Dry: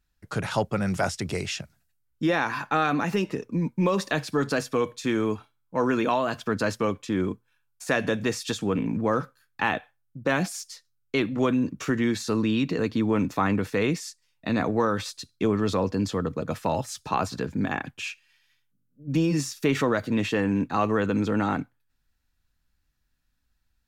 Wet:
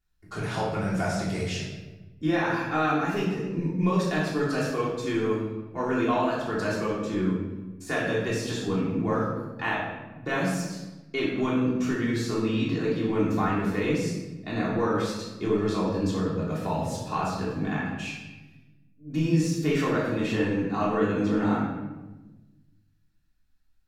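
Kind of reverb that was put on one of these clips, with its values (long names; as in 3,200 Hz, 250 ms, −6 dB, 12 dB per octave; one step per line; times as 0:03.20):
rectangular room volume 620 cubic metres, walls mixed, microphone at 3.3 metres
level −9.5 dB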